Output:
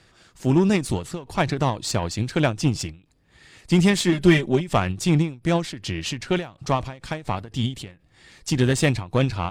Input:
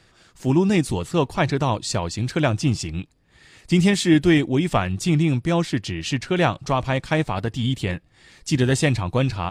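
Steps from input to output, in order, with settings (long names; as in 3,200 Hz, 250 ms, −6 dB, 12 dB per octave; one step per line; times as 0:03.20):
harmonic generator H 8 −27 dB, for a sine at −4.5 dBFS
0:04.12–0:04.69: comb filter 5.1 ms, depth 71%
every ending faded ahead of time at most 170 dB per second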